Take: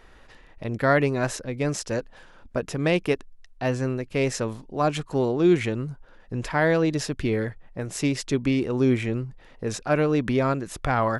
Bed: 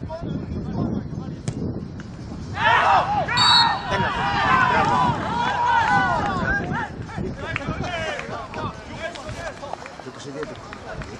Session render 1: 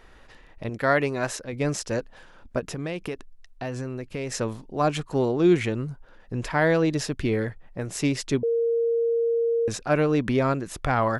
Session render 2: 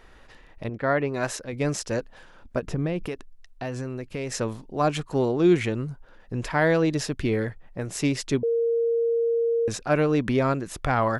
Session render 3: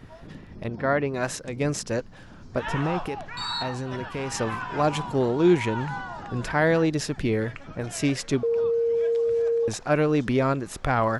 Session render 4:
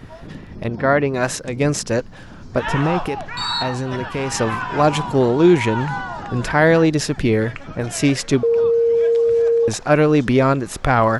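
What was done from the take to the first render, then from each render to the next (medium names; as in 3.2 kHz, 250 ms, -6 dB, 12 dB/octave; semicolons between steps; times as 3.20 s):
0.69–1.53 s: bass shelf 290 Hz -7 dB; 2.59–4.32 s: compression, threshold -27 dBFS; 8.43–9.68 s: bleep 464 Hz -20 dBFS
0.68–1.14 s: tape spacing loss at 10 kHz 25 dB; 2.66–3.06 s: tilt EQ -2.5 dB/octave
add bed -15.5 dB
trim +7.5 dB; peak limiter -3 dBFS, peak gain reduction 2.5 dB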